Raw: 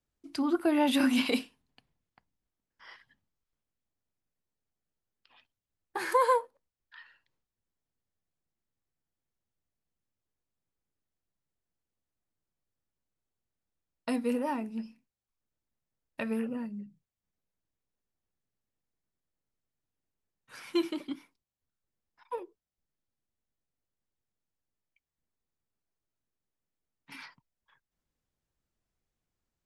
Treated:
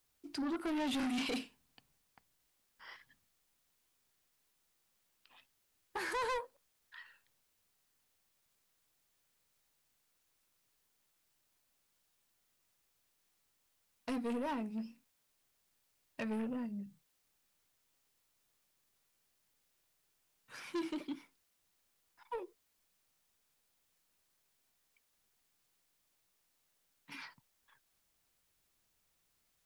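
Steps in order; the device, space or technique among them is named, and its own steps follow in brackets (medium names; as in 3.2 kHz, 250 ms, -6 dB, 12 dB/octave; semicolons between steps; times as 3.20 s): compact cassette (saturation -32 dBFS, distortion -6 dB; low-pass 10 kHz; wow and flutter; white noise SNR 32 dB); trim -1.5 dB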